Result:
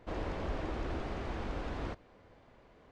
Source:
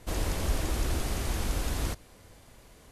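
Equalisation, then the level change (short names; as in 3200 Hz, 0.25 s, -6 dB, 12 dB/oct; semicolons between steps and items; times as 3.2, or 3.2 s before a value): tape spacing loss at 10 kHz 38 dB; low shelf 190 Hz -12 dB; +1.5 dB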